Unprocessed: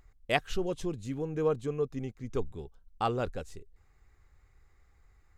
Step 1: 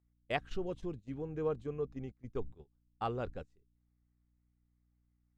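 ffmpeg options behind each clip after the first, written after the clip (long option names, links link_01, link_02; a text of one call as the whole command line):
ffmpeg -i in.wav -af "aeval=exprs='val(0)+0.00355*(sin(2*PI*60*n/s)+sin(2*PI*2*60*n/s)/2+sin(2*PI*3*60*n/s)/3+sin(2*PI*4*60*n/s)/4+sin(2*PI*5*60*n/s)/5)':channel_layout=same,agate=range=-19dB:threshold=-37dB:ratio=16:detection=peak,aemphasis=mode=reproduction:type=50fm,volume=-6.5dB" out.wav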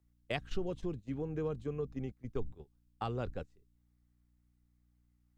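ffmpeg -i in.wav -filter_complex "[0:a]acrossover=split=230|3000[link_01][link_02][link_03];[link_02]acompressor=threshold=-39dB:ratio=6[link_04];[link_01][link_04][link_03]amix=inputs=3:normalize=0,volume=3.5dB" out.wav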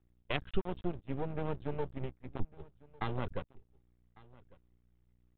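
ffmpeg -i in.wav -af "flanger=delay=0.7:depth=1.7:regen=-61:speed=1.3:shape=triangular,aresample=8000,aeval=exprs='max(val(0),0)':channel_layout=same,aresample=44100,aecho=1:1:1151:0.0668,volume=9dB" out.wav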